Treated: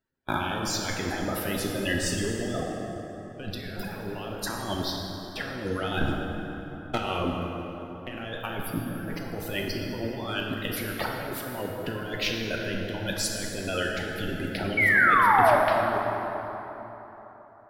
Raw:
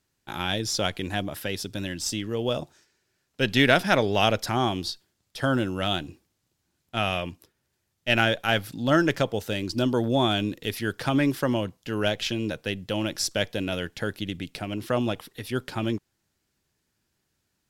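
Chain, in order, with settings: coarse spectral quantiser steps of 30 dB; reverb removal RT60 0.97 s; gate -46 dBFS, range -17 dB; peaking EQ 6 kHz -14.5 dB 1.9 oct; compressor with a negative ratio -38 dBFS, ratio -1; 6.01–6.98 s: waveshaping leveller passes 3; 14.77–15.56 s: painted sound fall 560–2300 Hz -25 dBFS; plate-style reverb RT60 3.8 s, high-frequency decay 0.55×, DRR -1 dB; trim +3 dB

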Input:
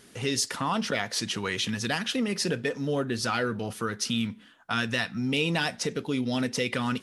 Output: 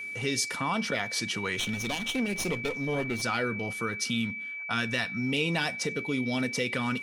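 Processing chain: 1.59–3.22 s: comb filter that takes the minimum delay 0.31 ms; whistle 2.3 kHz -33 dBFS; trim -2 dB

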